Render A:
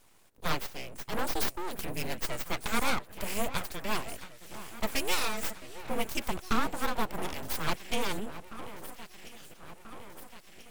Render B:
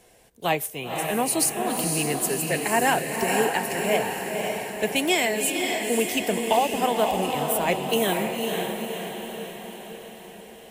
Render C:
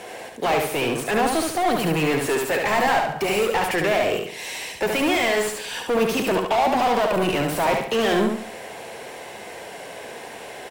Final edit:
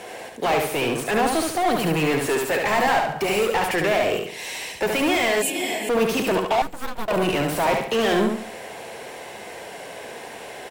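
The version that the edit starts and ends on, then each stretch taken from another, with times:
C
0:05.42–0:05.89: punch in from B
0:06.62–0:07.08: punch in from A

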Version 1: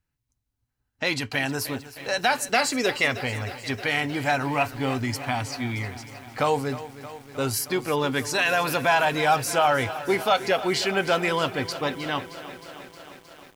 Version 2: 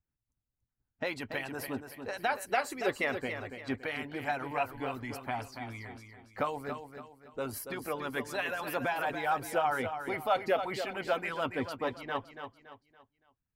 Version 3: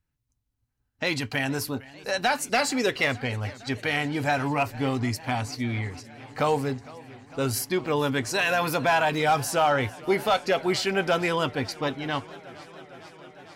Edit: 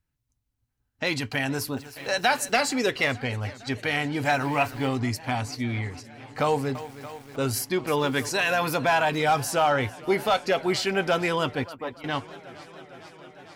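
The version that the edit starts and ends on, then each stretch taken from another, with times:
3
0:01.77–0:02.56: punch in from 1
0:04.25–0:04.87: punch in from 1
0:06.75–0:07.36: punch in from 1
0:07.87–0:08.29: punch in from 1
0:11.64–0:12.04: punch in from 2

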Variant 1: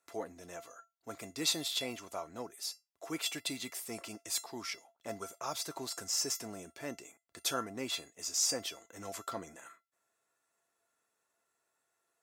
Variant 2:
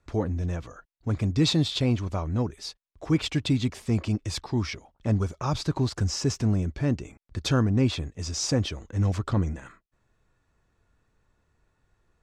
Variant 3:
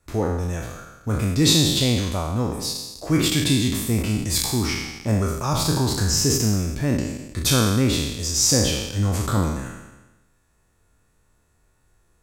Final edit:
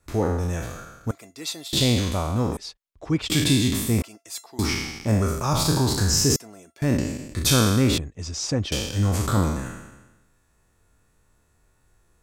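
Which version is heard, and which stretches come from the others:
3
0:01.11–0:01.73: punch in from 1
0:02.57–0:03.30: punch in from 2
0:04.02–0:04.59: punch in from 1
0:06.36–0:06.82: punch in from 1
0:07.98–0:08.72: punch in from 2

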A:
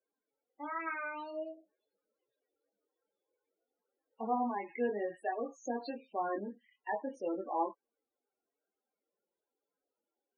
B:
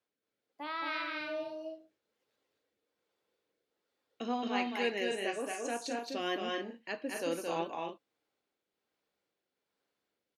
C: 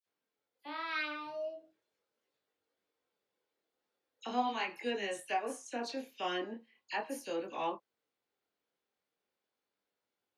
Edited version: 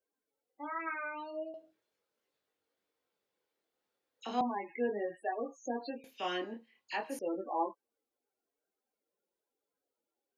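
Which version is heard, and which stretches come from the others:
A
0:01.54–0:04.41: punch in from C
0:06.04–0:07.19: punch in from C
not used: B

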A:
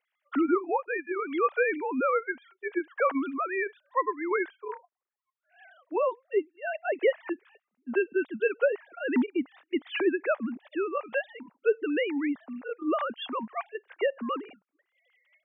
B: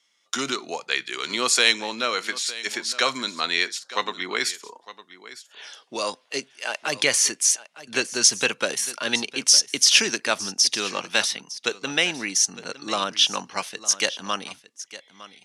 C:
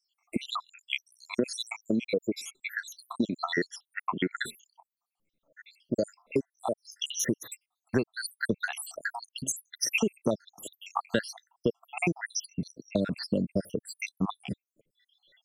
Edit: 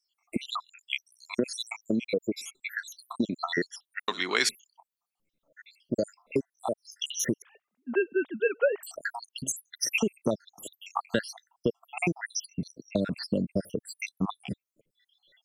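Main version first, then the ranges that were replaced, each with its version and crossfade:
C
0:04.08–0:04.49: punch in from B
0:07.42–0:08.83: punch in from A

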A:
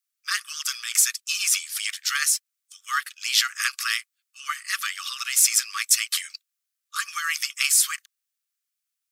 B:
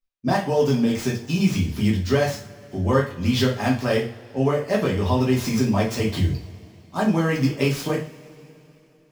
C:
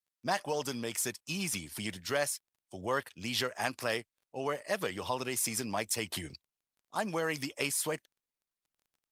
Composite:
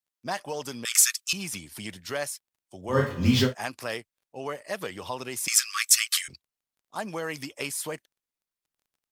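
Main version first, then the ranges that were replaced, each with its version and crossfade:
C
0:00.85–0:01.33: punch in from A
0:02.96–0:03.47: punch in from B, crossfade 0.16 s
0:05.48–0:06.28: punch in from A

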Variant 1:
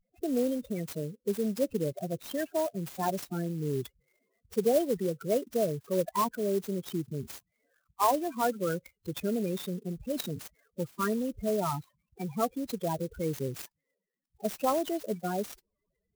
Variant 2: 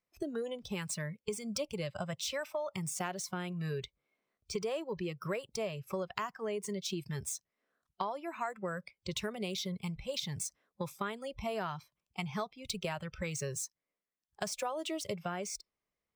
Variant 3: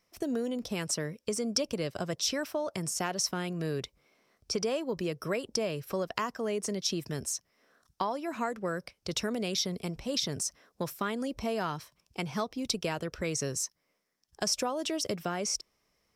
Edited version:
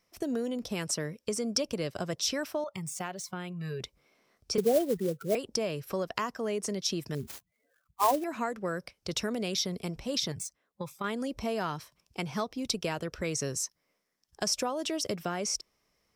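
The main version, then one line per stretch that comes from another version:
3
0:02.64–0:03.80: punch in from 2
0:04.58–0:05.35: punch in from 1
0:07.15–0:08.24: punch in from 1
0:10.32–0:11.04: punch in from 2

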